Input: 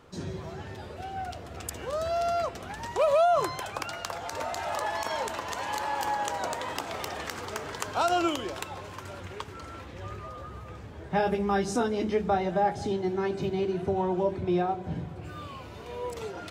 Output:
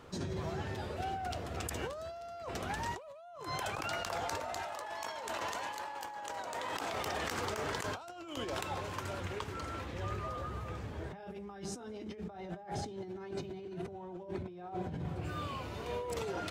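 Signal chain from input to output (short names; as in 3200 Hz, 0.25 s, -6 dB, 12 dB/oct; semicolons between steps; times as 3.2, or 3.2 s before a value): negative-ratio compressor -37 dBFS, ratio -1; 4.62–6.94 low shelf 180 Hz -8.5 dB; gain -4 dB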